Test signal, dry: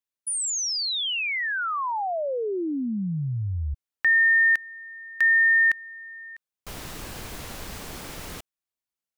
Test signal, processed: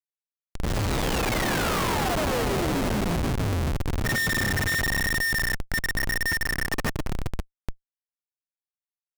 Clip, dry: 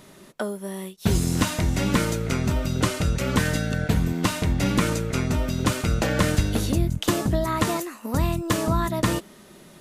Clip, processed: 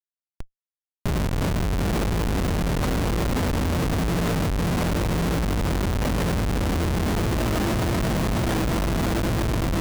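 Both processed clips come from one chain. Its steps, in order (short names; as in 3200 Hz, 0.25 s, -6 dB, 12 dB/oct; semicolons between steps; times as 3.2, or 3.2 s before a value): notches 60/120/180/240/300/360/420 Hz; swelling echo 0.123 s, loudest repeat 5, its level -6 dB; in parallel at -3 dB: soft clip -17 dBFS; on the sum: chorus 0.95 Hz, delay 17 ms, depth 6.2 ms; Schmitt trigger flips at -17.5 dBFS; gain -3.5 dB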